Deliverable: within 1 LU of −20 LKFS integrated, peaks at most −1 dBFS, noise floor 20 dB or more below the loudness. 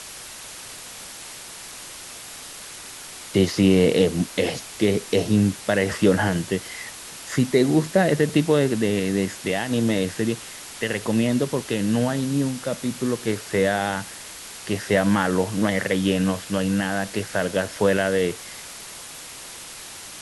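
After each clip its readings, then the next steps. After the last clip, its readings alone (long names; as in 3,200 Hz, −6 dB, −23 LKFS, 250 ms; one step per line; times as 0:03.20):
background noise floor −39 dBFS; target noise floor −43 dBFS; integrated loudness −22.5 LKFS; sample peak −5.5 dBFS; target loudness −20.0 LKFS
→ broadband denoise 6 dB, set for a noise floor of −39 dBFS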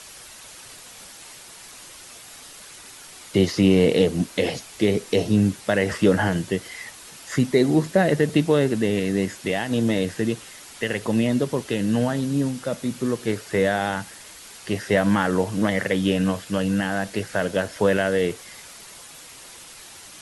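background noise floor −44 dBFS; integrated loudness −22.5 LKFS; sample peak −5.5 dBFS; target loudness −20.0 LKFS
→ level +2.5 dB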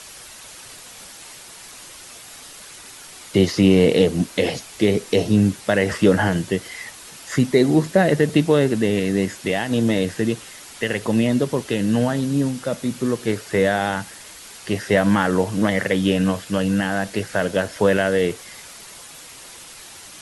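integrated loudness −20.0 LKFS; sample peak −3.0 dBFS; background noise floor −41 dBFS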